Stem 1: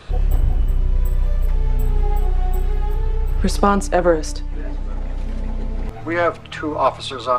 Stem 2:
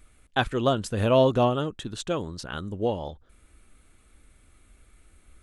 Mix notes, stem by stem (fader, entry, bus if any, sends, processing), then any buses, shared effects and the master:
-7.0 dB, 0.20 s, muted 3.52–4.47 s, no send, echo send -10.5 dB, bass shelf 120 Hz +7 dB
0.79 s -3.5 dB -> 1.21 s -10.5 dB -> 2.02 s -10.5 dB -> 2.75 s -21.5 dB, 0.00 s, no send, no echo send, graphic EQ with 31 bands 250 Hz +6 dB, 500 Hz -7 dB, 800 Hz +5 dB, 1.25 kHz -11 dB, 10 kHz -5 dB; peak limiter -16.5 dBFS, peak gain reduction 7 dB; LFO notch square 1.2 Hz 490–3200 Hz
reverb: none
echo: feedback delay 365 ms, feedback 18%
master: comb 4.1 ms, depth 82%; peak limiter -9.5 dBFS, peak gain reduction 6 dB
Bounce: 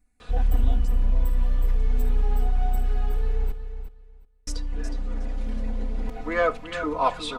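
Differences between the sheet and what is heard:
stem 1: missing bass shelf 120 Hz +7 dB; stem 2 -3.5 dB -> -15.0 dB

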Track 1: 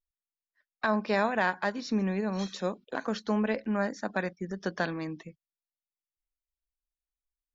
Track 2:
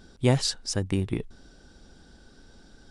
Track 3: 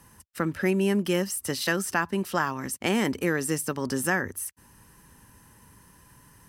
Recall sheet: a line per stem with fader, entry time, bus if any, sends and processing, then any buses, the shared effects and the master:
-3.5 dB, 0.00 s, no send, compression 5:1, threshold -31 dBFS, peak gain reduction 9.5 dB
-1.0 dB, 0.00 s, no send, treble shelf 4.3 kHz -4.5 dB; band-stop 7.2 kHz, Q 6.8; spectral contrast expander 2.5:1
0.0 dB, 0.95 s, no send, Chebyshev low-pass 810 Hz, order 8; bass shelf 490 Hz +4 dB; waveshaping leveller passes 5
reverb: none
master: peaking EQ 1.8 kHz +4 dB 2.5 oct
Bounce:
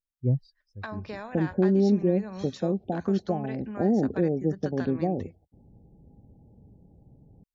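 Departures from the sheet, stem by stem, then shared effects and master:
stem 2 -1.0 dB -> -7.0 dB; stem 3: missing waveshaping leveller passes 5; master: missing peaking EQ 1.8 kHz +4 dB 2.5 oct

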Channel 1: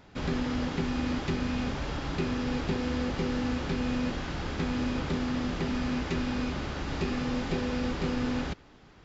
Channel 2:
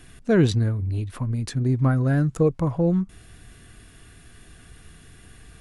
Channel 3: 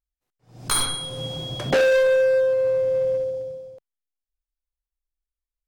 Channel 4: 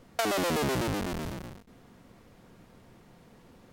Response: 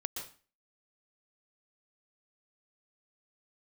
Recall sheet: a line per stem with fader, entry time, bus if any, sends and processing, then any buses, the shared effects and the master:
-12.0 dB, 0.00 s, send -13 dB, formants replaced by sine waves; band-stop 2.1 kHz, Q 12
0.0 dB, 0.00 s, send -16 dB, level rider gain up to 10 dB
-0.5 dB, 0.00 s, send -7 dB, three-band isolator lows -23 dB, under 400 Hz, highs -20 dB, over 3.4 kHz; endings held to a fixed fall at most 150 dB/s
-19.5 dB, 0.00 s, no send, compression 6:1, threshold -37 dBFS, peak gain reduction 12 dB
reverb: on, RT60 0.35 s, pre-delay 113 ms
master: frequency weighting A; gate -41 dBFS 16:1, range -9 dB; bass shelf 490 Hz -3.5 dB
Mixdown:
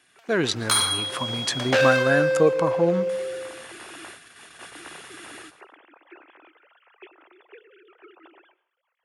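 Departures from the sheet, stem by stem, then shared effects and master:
stem 1: missing band-stop 2.1 kHz, Q 12; stem 3: missing three-band isolator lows -23 dB, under 400 Hz, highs -20 dB, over 3.4 kHz; stem 4 -19.5 dB -> -9.5 dB

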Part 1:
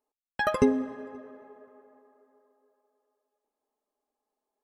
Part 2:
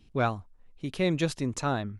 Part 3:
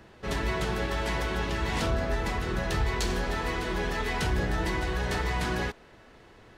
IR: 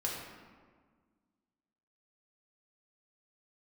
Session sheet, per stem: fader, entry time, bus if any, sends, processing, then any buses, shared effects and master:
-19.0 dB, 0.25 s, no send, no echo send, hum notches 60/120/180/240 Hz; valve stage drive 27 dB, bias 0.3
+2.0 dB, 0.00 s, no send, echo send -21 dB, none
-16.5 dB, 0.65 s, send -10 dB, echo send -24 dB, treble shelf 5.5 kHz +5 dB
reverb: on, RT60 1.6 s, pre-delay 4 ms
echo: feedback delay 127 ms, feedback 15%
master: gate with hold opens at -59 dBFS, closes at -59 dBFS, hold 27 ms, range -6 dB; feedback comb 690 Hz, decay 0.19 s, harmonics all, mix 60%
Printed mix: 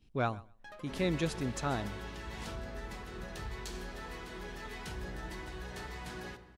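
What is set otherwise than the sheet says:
stem 2 +2.0 dB -> -5.5 dB; master: missing feedback comb 690 Hz, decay 0.19 s, harmonics all, mix 60%

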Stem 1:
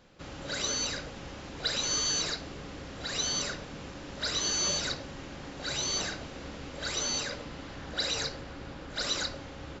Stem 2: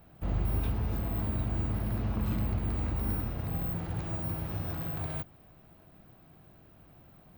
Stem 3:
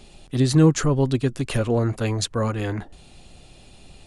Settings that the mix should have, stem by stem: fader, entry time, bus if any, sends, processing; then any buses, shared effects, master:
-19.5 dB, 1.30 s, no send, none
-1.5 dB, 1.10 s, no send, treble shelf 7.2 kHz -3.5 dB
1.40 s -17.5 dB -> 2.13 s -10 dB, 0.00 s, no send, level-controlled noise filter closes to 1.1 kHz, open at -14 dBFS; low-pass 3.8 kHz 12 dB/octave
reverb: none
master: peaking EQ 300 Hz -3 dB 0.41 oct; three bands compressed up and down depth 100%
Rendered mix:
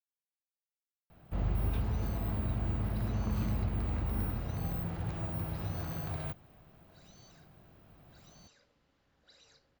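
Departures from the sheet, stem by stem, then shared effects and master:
stem 1 -19.5 dB -> -31.0 dB; stem 3: muted; master: missing three bands compressed up and down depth 100%

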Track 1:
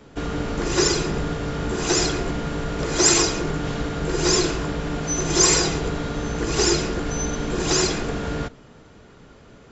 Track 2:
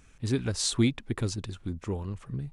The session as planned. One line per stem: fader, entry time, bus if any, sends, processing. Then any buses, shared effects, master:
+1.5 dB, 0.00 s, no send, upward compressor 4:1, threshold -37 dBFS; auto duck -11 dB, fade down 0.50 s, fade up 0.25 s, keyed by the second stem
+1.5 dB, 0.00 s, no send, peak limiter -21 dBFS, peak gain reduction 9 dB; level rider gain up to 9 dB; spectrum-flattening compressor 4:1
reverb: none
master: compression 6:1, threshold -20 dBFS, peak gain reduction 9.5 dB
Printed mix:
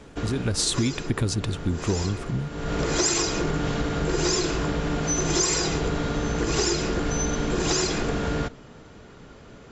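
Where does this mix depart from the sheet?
stem 1: missing upward compressor 4:1, threshold -37 dBFS; stem 2: missing spectrum-flattening compressor 4:1

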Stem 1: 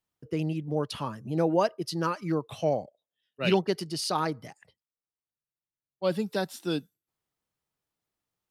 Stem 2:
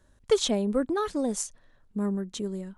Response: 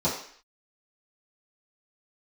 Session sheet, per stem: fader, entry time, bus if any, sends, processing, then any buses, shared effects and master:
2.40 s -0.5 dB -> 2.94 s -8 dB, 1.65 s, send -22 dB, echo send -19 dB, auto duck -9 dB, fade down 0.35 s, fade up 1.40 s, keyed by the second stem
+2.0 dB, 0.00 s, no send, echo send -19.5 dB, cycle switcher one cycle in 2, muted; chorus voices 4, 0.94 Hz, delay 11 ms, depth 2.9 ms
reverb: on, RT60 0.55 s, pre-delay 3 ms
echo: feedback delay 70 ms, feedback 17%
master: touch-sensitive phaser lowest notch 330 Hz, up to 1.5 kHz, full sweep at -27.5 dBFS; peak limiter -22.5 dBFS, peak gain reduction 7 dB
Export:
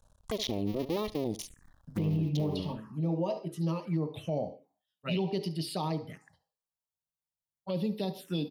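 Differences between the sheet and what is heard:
stem 1 -0.5 dB -> +6.5 dB; stem 2: missing chorus voices 4, 0.94 Hz, delay 11 ms, depth 2.9 ms

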